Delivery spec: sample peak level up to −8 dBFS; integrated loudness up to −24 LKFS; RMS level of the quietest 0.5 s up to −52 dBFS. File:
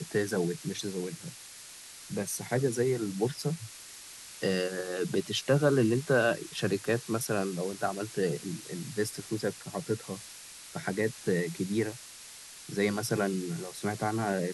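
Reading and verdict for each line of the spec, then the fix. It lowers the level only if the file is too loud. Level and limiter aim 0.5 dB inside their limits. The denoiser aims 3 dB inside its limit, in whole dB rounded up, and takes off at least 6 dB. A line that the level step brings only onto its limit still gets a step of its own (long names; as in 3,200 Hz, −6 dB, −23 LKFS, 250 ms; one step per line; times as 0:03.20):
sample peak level −14.0 dBFS: in spec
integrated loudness −31.5 LKFS: in spec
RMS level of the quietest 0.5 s −48 dBFS: out of spec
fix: broadband denoise 7 dB, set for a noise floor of −48 dBFS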